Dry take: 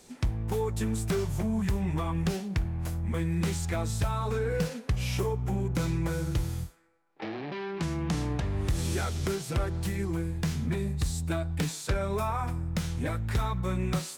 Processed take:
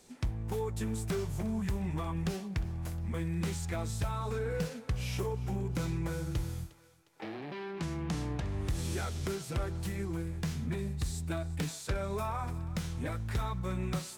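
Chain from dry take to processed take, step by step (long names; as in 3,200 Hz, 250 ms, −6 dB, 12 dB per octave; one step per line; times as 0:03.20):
feedback echo with a high-pass in the loop 357 ms, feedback 54%, level −18 dB
level −5 dB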